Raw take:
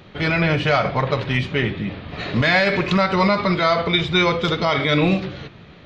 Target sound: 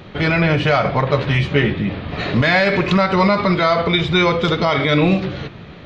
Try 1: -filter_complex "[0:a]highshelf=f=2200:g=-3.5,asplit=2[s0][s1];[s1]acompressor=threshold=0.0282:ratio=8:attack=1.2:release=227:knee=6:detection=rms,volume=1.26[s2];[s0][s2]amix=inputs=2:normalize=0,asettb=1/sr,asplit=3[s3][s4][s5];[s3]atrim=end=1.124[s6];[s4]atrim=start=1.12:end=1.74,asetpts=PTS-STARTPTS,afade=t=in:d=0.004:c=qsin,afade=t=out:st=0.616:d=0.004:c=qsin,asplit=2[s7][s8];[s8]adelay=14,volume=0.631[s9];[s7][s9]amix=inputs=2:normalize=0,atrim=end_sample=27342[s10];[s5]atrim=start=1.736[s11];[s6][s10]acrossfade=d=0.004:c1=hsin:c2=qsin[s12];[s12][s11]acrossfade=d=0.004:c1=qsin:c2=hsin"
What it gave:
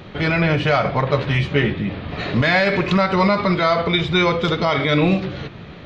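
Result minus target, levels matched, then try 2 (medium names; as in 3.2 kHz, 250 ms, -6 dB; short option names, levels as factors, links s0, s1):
compression: peak gain reduction +8.5 dB
-filter_complex "[0:a]highshelf=f=2200:g=-3.5,asplit=2[s0][s1];[s1]acompressor=threshold=0.0841:ratio=8:attack=1.2:release=227:knee=6:detection=rms,volume=1.26[s2];[s0][s2]amix=inputs=2:normalize=0,asettb=1/sr,asplit=3[s3][s4][s5];[s3]atrim=end=1.124[s6];[s4]atrim=start=1.12:end=1.74,asetpts=PTS-STARTPTS,afade=t=in:d=0.004:c=qsin,afade=t=out:st=0.616:d=0.004:c=qsin,asplit=2[s7][s8];[s8]adelay=14,volume=0.631[s9];[s7][s9]amix=inputs=2:normalize=0,atrim=end_sample=27342[s10];[s5]atrim=start=1.736[s11];[s6][s10]acrossfade=d=0.004:c1=hsin:c2=qsin[s12];[s12][s11]acrossfade=d=0.004:c1=qsin:c2=hsin"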